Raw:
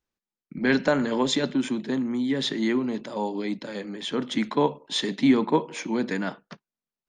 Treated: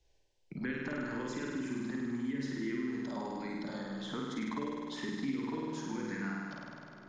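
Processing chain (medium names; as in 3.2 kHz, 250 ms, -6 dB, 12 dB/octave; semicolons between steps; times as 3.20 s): low-pass 6.7 kHz 24 dB/octave; bass shelf 110 Hz +7.5 dB; de-hum 77.98 Hz, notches 31; dynamic bell 180 Hz, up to -3 dB, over -35 dBFS, Q 1.6; compression 6:1, threshold -25 dBFS, peak gain reduction 11 dB; touch-sensitive phaser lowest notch 220 Hz, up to 1.5 kHz, full sweep at -20.5 dBFS; flutter echo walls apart 8.7 m, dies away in 1.4 s; on a send at -15.5 dB: reverberation RT60 1.7 s, pre-delay 51 ms; on the sum: three bands compressed up and down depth 70%; trim -9 dB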